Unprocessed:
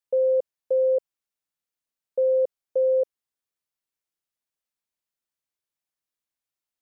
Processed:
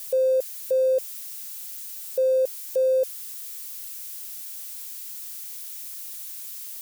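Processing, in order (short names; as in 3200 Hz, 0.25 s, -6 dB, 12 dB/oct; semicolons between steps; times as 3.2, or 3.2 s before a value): switching spikes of -32 dBFS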